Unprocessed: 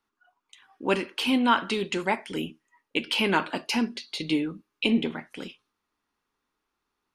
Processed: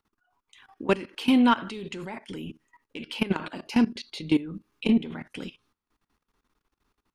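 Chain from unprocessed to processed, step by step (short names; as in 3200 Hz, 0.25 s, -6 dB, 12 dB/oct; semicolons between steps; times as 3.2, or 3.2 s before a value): in parallel at +1 dB: compressor 16:1, threshold -30 dBFS, peak gain reduction 15.5 dB; on the sum: low shelf 190 Hz +11.5 dB; soft clip -7 dBFS, distortion -24 dB; level quantiser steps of 18 dB; 3.64–4.55 mismatched tape noise reduction decoder only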